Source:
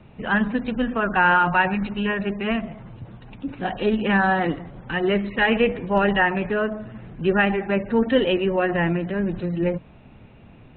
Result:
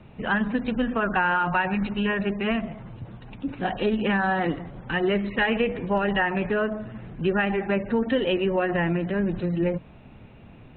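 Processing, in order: compressor, threshold -19 dBFS, peak gain reduction 6.5 dB

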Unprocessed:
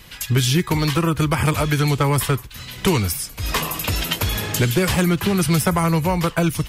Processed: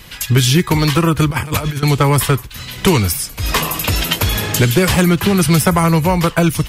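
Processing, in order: 1.3–1.83 negative-ratio compressor -24 dBFS, ratio -0.5; gain +5.5 dB

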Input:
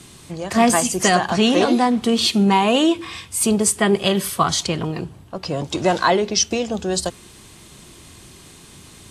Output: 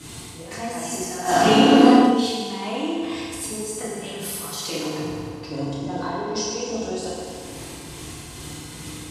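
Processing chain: 4.47–4.97 HPF 280 Hz 12 dB/oct; 5.65–6.34 tilt shelf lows +5.5 dB; auto swell 0.39 s; compressor 5:1, threshold -33 dBFS, peak gain reduction 19 dB; tremolo triangle 2.4 Hz, depth 55%; FDN reverb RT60 2.5 s, low-frequency decay 0.85×, high-frequency decay 0.7×, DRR -9.5 dB; 1.23–1.98 reverb throw, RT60 1 s, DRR -11.5 dB

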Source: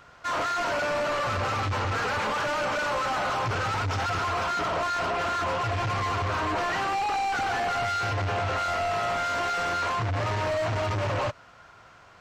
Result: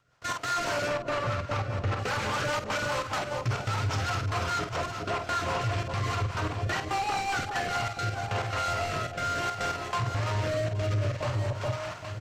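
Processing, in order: step gate "..x.xxxxx.xxx.x" 139 bpm -24 dB; echo with dull and thin repeats by turns 0.409 s, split 880 Hz, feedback 51%, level -8.5 dB; compressor 3:1, threshold -33 dBFS, peak gain reduction 6.5 dB; high shelf 5000 Hz +10 dB, from 0.88 s -4.5 dB, from 1.99 s +7.5 dB; doubler 48 ms -8 dB; rotary speaker horn 5 Hz, later 0.6 Hz, at 7.4; bell 120 Hz +8.5 dB 0.62 oct; limiter -28.5 dBFS, peak gain reduction 8.5 dB; gain +7.5 dB

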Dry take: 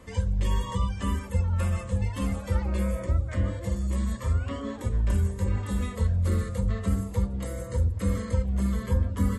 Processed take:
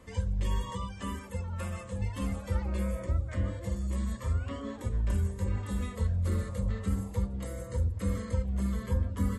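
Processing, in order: 0.7–1.99 low shelf 99 Hz -11 dB; 6.34–7.09 spectral repair 520–1100 Hz both; gain -4.5 dB

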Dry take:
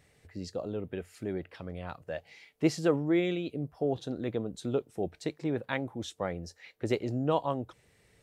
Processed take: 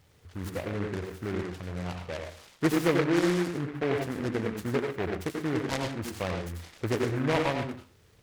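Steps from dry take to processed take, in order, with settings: bell 91 Hz +7.5 dB 0.77 oct; on a send at -3 dB: reverb RT60 0.35 s, pre-delay 79 ms; on the sum: noise-modulated delay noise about 1300 Hz, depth 0.13 ms

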